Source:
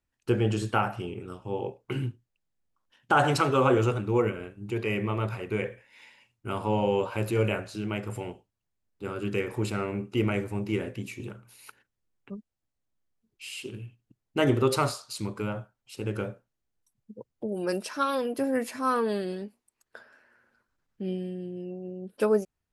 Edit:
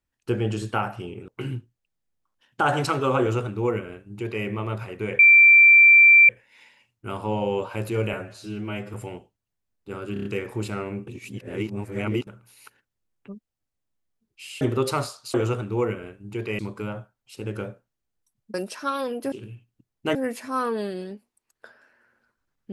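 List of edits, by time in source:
1.28–1.79 s: delete
3.71–4.96 s: copy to 15.19 s
5.70 s: add tone 2.35 kHz -9 dBFS 1.10 s
7.54–8.08 s: stretch 1.5×
9.27 s: stutter 0.03 s, 5 plays
10.09–11.29 s: reverse
13.63–14.46 s: move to 18.46 s
17.14–17.68 s: delete

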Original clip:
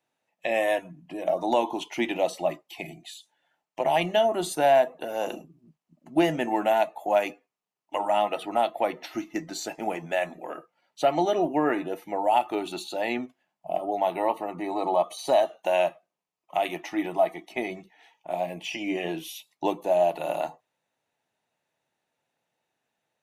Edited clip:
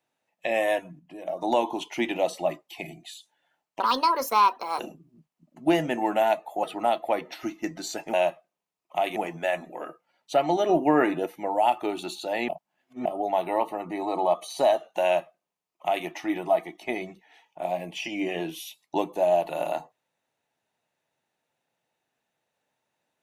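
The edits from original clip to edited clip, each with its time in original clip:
0.99–1.42 s: gain -6.5 dB
3.80–5.29 s: speed 150%
7.13–8.35 s: delete
11.38–11.95 s: gain +3.5 dB
13.17–13.74 s: reverse
15.72–16.75 s: copy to 9.85 s

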